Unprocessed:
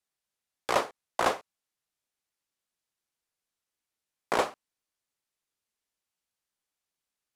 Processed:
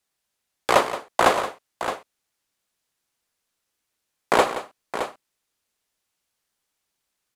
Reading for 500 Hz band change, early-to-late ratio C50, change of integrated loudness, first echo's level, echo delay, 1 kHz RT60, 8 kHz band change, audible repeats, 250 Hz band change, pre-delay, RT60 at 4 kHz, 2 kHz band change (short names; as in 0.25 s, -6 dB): +9.0 dB, none, +7.0 dB, -18.5 dB, 82 ms, none, +8.0 dB, 3, +9.0 dB, none, none, +9.0 dB